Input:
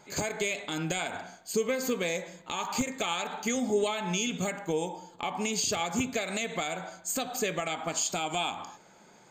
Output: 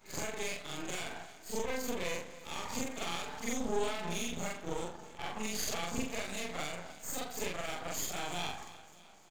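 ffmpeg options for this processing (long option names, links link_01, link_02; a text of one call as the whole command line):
ffmpeg -i in.wav -af "afftfilt=real='re':imag='-im':win_size=4096:overlap=0.75,aecho=1:1:300|600|900|1200|1500:0.133|0.0773|0.0449|0.026|0.0151,aeval=exprs='max(val(0),0)':channel_layout=same,volume=1.5dB" out.wav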